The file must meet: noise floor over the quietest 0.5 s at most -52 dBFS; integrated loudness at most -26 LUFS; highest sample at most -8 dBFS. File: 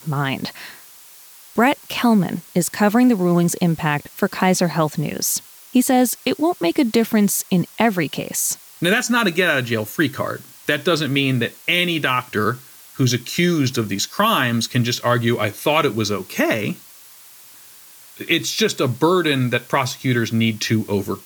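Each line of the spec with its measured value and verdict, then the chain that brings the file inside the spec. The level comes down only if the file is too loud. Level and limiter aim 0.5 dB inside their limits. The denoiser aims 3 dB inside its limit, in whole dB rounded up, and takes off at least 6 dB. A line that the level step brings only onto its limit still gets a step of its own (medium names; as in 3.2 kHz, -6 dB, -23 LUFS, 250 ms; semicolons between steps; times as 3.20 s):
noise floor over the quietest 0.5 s -44 dBFS: fail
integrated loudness -19.0 LUFS: fail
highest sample -5.0 dBFS: fail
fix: noise reduction 6 dB, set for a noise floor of -44 dBFS; trim -7.5 dB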